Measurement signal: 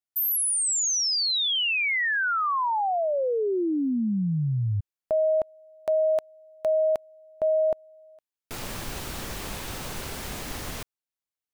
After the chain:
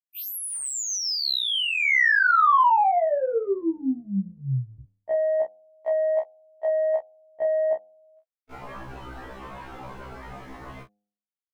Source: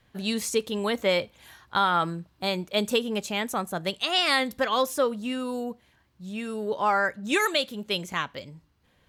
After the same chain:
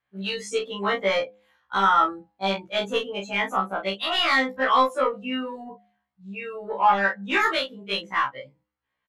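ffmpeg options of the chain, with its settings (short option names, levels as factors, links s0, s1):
-filter_complex "[0:a]afftdn=nr=21:nf=-33,asplit=2[s0][s1];[s1]highpass=f=720:p=1,volume=3.98,asoftclip=type=tanh:threshold=0.266[s2];[s0][s2]amix=inputs=2:normalize=0,lowpass=f=2400:p=1,volume=0.501,adynamicequalizer=threshold=0.0112:dfrequency=2800:dqfactor=1.9:tfrequency=2800:tqfactor=1.9:attack=5:release=100:ratio=0.45:range=3:mode=cutabove:tftype=bell,acrossover=split=850|2700[s3][s4][s5];[s4]acontrast=48[s6];[s3][s6][s5]amix=inputs=3:normalize=0,asplit=2[s7][s8];[s8]adelay=30,volume=0.531[s9];[s7][s9]amix=inputs=2:normalize=0,bandreject=f=102.8:t=h:w=4,bandreject=f=205.6:t=h:w=4,bandreject=f=308.4:t=h:w=4,bandreject=f=411.2:t=h:w=4,bandreject=f=514:t=h:w=4,bandreject=f=616.8:t=h:w=4,bandreject=f=719.6:t=h:w=4,bandreject=f=822.4:t=h:w=4,afftfilt=real='re*1.73*eq(mod(b,3),0)':imag='im*1.73*eq(mod(b,3),0)':win_size=2048:overlap=0.75"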